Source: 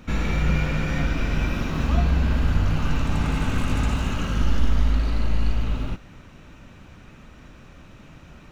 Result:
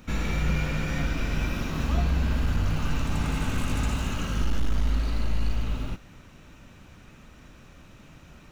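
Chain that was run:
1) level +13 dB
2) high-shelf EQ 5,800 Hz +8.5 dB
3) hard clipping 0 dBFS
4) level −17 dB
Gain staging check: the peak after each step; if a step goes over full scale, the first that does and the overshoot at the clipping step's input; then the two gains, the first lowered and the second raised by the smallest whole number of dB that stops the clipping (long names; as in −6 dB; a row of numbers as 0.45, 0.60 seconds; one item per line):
+5.5, +5.5, 0.0, −17.0 dBFS
step 1, 5.5 dB
step 1 +7 dB, step 4 −11 dB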